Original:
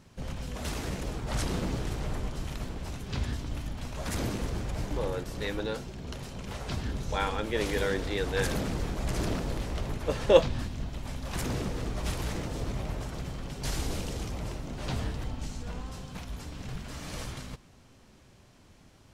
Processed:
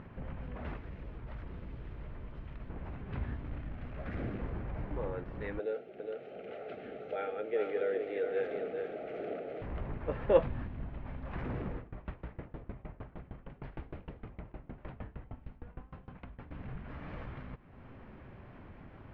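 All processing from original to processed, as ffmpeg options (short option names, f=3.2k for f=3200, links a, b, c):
-filter_complex "[0:a]asettb=1/sr,asplit=3[a][b][c];[a]atrim=end=0.764[d];[b]atrim=start=0.76:end=2.7,asetpts=PTS-STARTPTS,afade=t=in:d=0.004:c=qsin,afade=t=out:st=1.936:d=0.004:c=qsin,bandreject=f=770:w=12,acrossover=split=110|2900[e][f][g];[e]acompressor=threshold=-38dB:ratio=4[h];[f]acompressor=threshold=-47dB:ratio=4[i];[g]acompressor=threshold=-47dB:ratio=4[j];[h][i][j]amix=inputs=3:normalize=0[k];[c]atrim=start=2.696[l];[d][k]acrossfade=d=0.004:c1=hsin:c2=qsin[m];[m][l]acrossfade=d=0.004:c1=qsin:c2=hsin,asettb=1/sr,asplit=3[n][o][p];[n]atrim=end=3.444[q];[o]atrim=start=3.44:end=4.4,asetpts=PTS-STARTPTS,afade=t=in:d=0.004:c=qsin,afade=t=out:st=0.956:d=0.004:c=qsin,equalizer=f=960:t=o:w=0.27:g=-12.5,acrusher=bits=8:dc=4:mix=0:aa=0.000001[r];[p]atrim=start=4.396[s];[q][r]acrossfade=d=0.004:c1=hsin:c2=qsin[t];[t][s]acrossfade=d=0.004:c1=qsin:c2=hsin,asettb=1/sr,asplit=3[u][v][w];[u]atrim=end=5.594[x];[v]atrim=start=5.59:end=9.62,asetpts=PTS-STARTPTS,afade=t=in:d=0.004:c=qsin,afade=t=out:st=4.026:d=0.004:c=qsin,asuperstop=centerf=1000:order=4:qfactor=1.9,highpass=410,equalizer=f=440:t=q:w=4:g=9,equalizer=f=650:t=q:w=4:g=5,equalizer=f=1.7k:t=q:w=4:g=-8,equalizer=f=5k:t=q:w=4:g=-6,lowpass=f=8.4k:w=0.5412,lowpass=f=8.4k:w=1.3066,aecho=1:1:408:0.501,atrim=end_sample=177723[y];[w]atrim=start=9.616[z];[x][y]acrossfade=d=0.004:c1=hsin:c2=qsin[aa];[aa][z]acrossfade=d=0.004:c1=qsin:c2=hsin,asettb=1/sr,asplit=3[ab][ac][ad];[ab]atrim=end=11.774[ae];[ac]atrim=start=11.77:end=16.51,asetpts=PTS-STARTPTS,afade=t=in:d=0.004:c=qsin,afade=t=out:st=4.736:d=0.004:c=qsin,lowpass=4.5k,aeval=exprs='val(0)*pow(10,-26*if(lt(mod(6.5*n/s,1),2*abs(6.5)/1000),1-mod(6.5*n/s,1)/(2*abs(6.5)/1000),(mod(6.5*n/s,1)-2*abs(6.5)/1000)/(1-2*abs(6.5)/1000))/20)':c=same[af];[ad]atrim=start=16.506[ag];[ae][af]acrossfade=d=0.004:c1=hsin:c2=qsin[ah];[ah][ag]acrossfade=d=0.004:c1=qsin:c2=hsin,lowpass=f=2.2k:w=0.5412,lowpass=f=2.2k:w=1.3066,acompressor=mode=upward:threshold=-33dB:ratio=2.5,volume=-5.5dB"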